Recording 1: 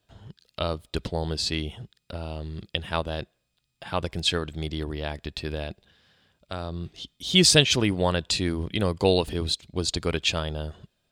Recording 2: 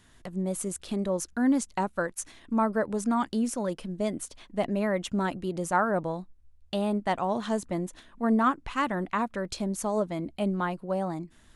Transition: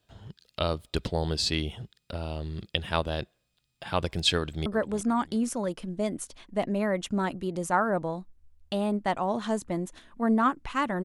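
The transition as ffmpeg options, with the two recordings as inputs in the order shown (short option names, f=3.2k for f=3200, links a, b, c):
-filter_complex "[0:a]apad=whole_dur=11.04,atrim=end=11.04,atrim=end=4.662[a];[1:a]atrim=start=2.668:end=9.05[b];[a][b]acrossfade=d=0.004:c1=hsin:c2=hsin,asplit=2[c][d];[d]afade=t=in:st=4.37:d=0.01,afade=t=out:st=4.66:d=0.01,aecho=0:1:350|700|1050|1400:0.188365|0.0847642|0.0381439|0.0171648[e];[c][e]amix=inputs=2:normalize=0"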